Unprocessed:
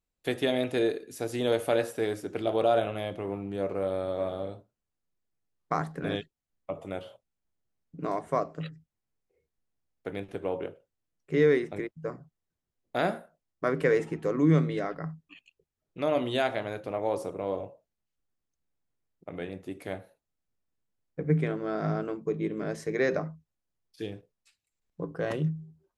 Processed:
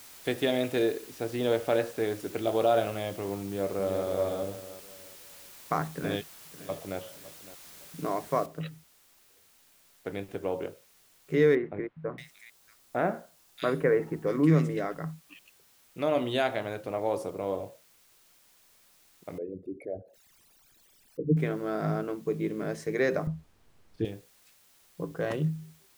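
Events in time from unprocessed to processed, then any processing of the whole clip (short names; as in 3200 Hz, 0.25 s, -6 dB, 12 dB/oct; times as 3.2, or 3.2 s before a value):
0.86–2.2 air absorption 110 m
3.43–4.07 echo throw 0.36 s, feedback 35%, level -5.5 dB
5.89–6.98 echo throw 0.56 s, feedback 35%, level -16.5 dB
8.46 noise floor step -50 dB -62 dB
11.55–14.77 bands offset in time lows, highs 0.63 s, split 2300 Hz
19.38–21.37 formant sharpening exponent 3
23.27–24.05 tilt -4 dB/oct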